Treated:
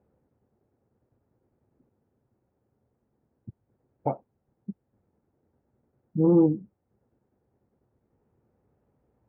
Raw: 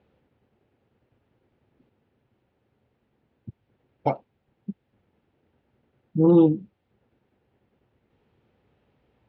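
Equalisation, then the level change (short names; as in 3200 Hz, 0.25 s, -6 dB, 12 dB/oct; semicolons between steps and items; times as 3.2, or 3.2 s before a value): LPF 1300 Hz 12 dB/oct; air absorption 370 m; -2.5 dB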